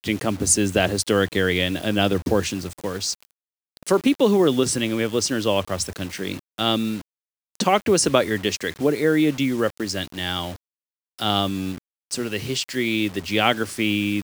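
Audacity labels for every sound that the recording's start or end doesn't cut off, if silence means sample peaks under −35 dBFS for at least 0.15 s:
3.770000	6.390000	sound
6.580000	7.010000	sound
7.550000	10.560000	sound
11.180000	11.780000	sound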